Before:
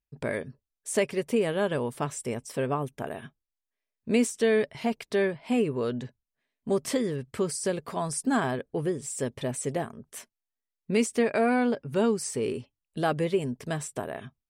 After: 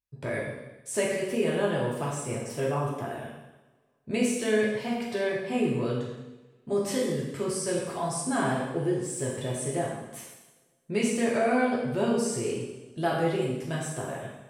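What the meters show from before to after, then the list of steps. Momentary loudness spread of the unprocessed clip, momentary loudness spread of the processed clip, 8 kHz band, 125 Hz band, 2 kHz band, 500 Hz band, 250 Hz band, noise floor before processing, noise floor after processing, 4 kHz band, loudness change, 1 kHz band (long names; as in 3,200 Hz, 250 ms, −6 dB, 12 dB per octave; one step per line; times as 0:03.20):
13 LU, 12 LU, +0.5 dB, +2.0 dB, +0.5 dB, −0.5 dB, −0.5 dB, below −85 dBFS, −64 dBFS, +0.5 dB, −0.5 dB, +0.5 dB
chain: tape wow and flutter 38 cents
coupled-rooms reverb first 1 s, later 2.6 s, from −25 dB, DRR −4.5 dB
level −5.5 dB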